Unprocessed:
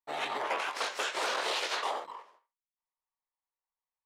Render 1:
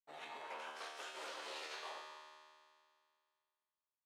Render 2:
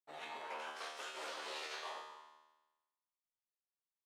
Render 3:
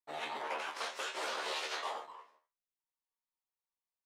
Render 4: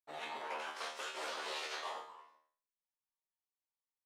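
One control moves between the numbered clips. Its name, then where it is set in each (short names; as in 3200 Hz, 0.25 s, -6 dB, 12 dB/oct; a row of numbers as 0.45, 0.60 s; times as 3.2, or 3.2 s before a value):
resonator, decay: 2.2, 1.1, 0.2, 0.47 s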